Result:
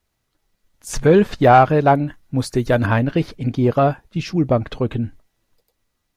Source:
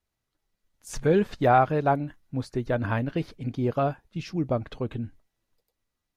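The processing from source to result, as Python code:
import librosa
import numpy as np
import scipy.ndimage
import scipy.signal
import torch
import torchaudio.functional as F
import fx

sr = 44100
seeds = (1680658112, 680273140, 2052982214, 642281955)

p1 = fx.high_shelf(x, sr, hz=fx.line((2.37, 6100.0), (2.85, 4100.0)), db=12.0, at=(2.37, 2.85), fade=0.02)
p2 = 10.0 ** (-18.0 / 20.0) * np.tanh(p1 / 10.0 ** (-18.0 / 20.0))
p3 = p1 + (p2 * librosa.db_to_amplitude(-3.5))
y = p3 * librosa.db_to_amplitude(5.5)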